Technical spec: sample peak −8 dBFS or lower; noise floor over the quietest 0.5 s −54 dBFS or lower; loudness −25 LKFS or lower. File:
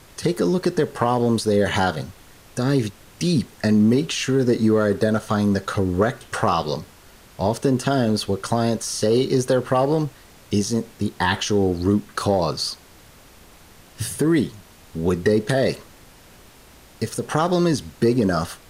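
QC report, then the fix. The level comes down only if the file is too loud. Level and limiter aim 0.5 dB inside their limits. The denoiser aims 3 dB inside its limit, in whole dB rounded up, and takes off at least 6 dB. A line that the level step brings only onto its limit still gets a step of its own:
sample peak −4.0 dBFS: out of spec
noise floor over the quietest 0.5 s −48 dBFS: out of spec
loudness −21.5 LKFS: out of spec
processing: broadband denoise 6 dB, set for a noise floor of −48 dBFS
level −4 dB
brickwall limiter −8.5 dBFS

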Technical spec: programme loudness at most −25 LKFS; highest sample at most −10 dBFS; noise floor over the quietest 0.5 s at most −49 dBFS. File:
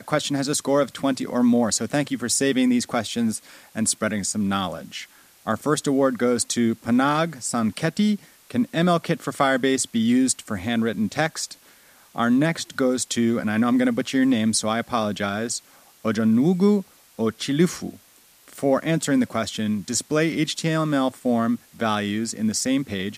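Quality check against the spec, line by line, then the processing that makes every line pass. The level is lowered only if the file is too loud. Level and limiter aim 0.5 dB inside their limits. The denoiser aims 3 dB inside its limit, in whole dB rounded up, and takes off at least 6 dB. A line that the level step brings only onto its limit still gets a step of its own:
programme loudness −22.5 LKFS: out of spec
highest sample −4.5 dBFS: out of spec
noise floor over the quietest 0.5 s −54 dBFS: in spec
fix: level −3 dB
brickwall limiter −10.5 dBFS

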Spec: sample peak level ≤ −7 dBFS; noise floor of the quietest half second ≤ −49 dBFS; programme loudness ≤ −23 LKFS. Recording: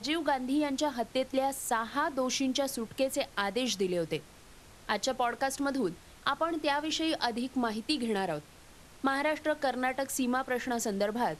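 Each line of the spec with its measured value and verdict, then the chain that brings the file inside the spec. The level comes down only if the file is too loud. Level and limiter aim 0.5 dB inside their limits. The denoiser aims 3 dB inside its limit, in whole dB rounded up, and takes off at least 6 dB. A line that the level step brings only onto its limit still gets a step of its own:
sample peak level −14.0 dBFS: in spec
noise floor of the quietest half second −54 dBFS: in spec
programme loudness −31.5 LKFS: in spec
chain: no processing needed

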